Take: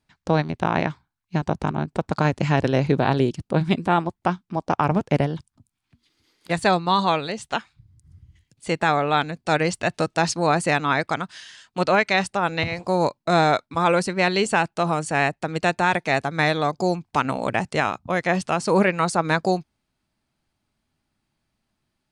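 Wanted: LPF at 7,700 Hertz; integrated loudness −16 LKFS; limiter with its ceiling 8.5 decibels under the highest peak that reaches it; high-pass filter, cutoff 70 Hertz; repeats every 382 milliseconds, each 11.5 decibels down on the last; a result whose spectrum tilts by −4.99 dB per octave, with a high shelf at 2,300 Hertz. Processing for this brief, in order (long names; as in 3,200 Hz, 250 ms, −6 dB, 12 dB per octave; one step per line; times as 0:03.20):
high-pass filter 70 Hz
low-pass filter 7,700 Hz
high-shelf EQ 2,300 Hz −3 dB
brickwall limiter −15 dBFS
repeating echo 382 ms, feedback 27%, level −11.5 dB
level +11 dB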